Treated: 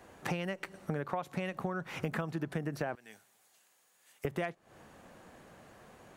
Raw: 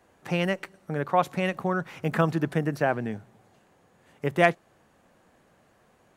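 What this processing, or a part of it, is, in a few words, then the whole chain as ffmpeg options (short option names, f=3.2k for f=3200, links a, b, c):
serial compression, leveller first: -filter_complex "[0:a]asettb=1/sr,asplit=3[a][b][c];[a]atrim=end=2.954[d];[b]atrim=start=2.95:end=4.25,asetpts=PTS-STARTPTS,afade=t=in:d=0.004:c=qsin,afade=t=out:st=1.296:d=0.004:c=qsin,aderivative[e];[c]atrim=start=4.246[f];[d][e]acrossfade=d=0.004:c1=hsin:c2=qsin[g];[g][f]acrossfade=d=0.004:c1=qsin:c2=hsin,acompressor=threshold=-29dB:ratio=2,acompressor=threshold=-39dB:ratio=5,volume=6dB"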